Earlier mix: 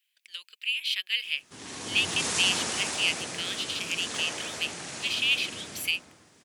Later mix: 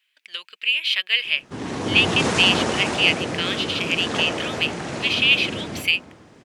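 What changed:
background: send -8.5 dB; master: remove pre-emphasis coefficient 0.9

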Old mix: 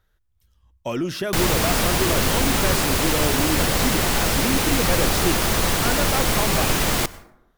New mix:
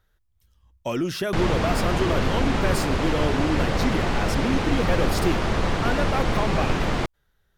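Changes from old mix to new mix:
speech: send off; background: add tape spacing loss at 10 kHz 25 dB

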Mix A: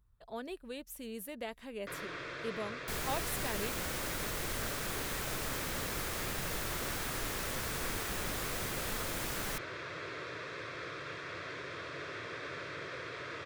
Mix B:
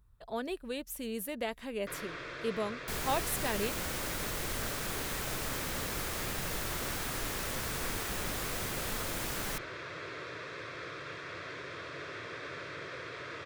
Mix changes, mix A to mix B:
speech +5.5 dB; second sound: send +7.5 dB

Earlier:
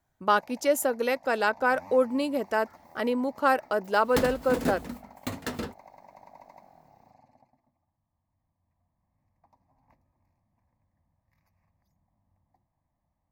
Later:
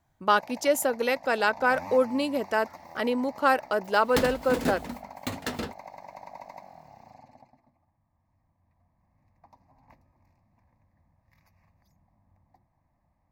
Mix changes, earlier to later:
first sound +7.0 dB; master: add bell 3400 Hz +3.5 dB 2 oct

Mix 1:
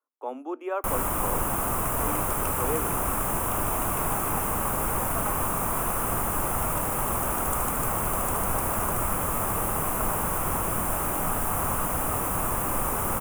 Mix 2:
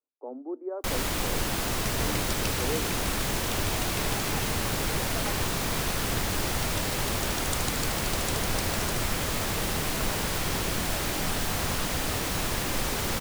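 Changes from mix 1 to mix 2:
speech: add Gaussian blur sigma 9.3 samples; second sound: remove weighting filter A; master: remove EQ curve 430 Hz 0 dB, 1200 Hz +8 dB, 1800 Hz -6 dB, 2700 Hz -7 dB, 4200 Hz -23 dB, 9800 Hz +6 dB

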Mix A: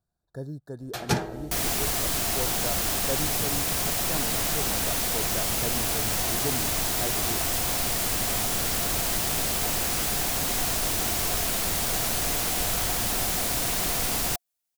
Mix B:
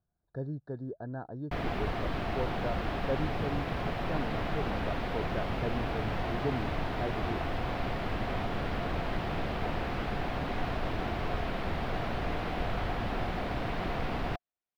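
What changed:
first sound: muted; second sound: add high shelf 4400 Hz -10.5 dB; master: add air absorption 380 m

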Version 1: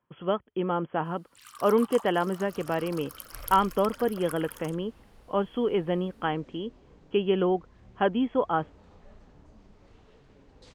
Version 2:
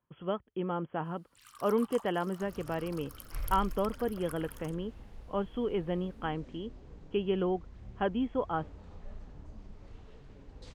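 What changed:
speech -7.0 dB; first sound -6.5 dB; master: add low shelf 120 Hz +10 dB

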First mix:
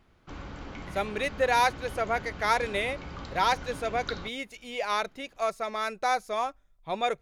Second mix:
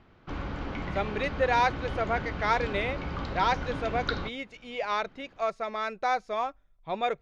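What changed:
background +6.5 dB; master: add air absorption 140 m

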